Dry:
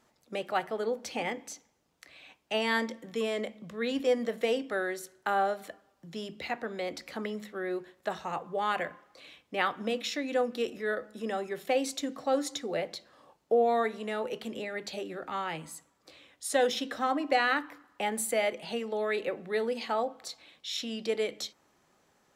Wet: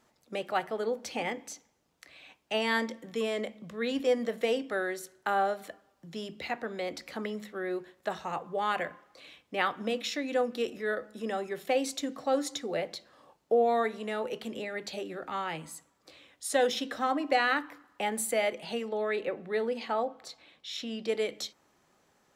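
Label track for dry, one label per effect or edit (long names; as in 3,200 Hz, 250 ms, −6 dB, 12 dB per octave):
18.890000	21.080000	high-shelf EQ 4,500 Hz −8 dB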